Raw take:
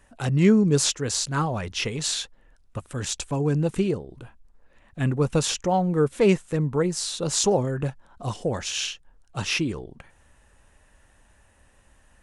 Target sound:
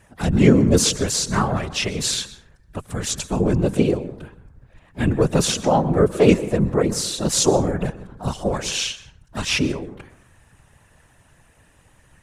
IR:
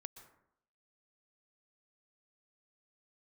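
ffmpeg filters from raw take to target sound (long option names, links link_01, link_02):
-filter_complex "[0:a]asplit=2[link_01][link_02];[1:a]atrim=start_sample=2205[link_03];[link_02][link_03]afir=irnorm=-1:irlink=0,volume=7.5dB[link_04];[link_01][link_04]amix=inputs=2:normalize=0,asplit=2[link_05][link_06];[link_06]asetrate=58866,aresample=44100,atempo=0.749154,volume=-12dB[link_07];[link_05][link_07]amix=inputs=2:normalize=0,afftfilt=real='hypot(re,im)*cos(2*PI*random(0))':imag='hypot(re,im)*sin(2*PI*random(1))':win_size=512:overlap=0.75,volume=3dB"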